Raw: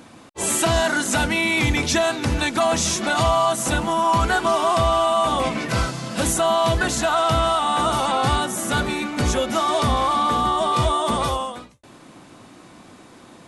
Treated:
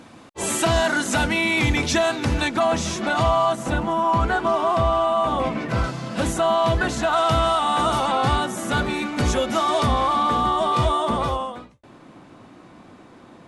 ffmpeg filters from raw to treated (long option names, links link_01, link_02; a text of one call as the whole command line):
ffmpeg -i in.wav -af "asetnsamples=nb_out_samples=441:pad=0,asendcmd='2.48 lowpass f 2500;3.55 lowpass f 1500;5.84 lowpass f 2700;7.13 lowpass f 6700;7.99 lowpass f 3900;8.94 lowpass f 6700;9.86 lowpass f 3900;11.05 lowpass f 2000',lowpass=frequency=6200:poles=1" out.wav